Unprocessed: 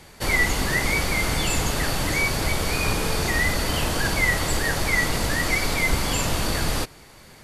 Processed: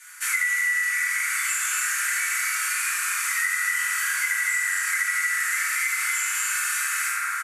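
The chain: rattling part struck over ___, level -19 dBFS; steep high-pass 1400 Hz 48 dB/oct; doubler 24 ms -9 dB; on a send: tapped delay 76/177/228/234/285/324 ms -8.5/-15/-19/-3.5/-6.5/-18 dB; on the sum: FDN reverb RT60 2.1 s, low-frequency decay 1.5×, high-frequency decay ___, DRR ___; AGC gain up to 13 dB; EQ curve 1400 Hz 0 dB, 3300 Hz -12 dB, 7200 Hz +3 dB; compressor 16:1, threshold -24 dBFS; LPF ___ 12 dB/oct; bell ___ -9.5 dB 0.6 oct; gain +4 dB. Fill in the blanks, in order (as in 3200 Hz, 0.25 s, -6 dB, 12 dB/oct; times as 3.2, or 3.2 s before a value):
-29 dBFS, 0.3×, -9.5 dB, 11000 Hz, 4700 Hz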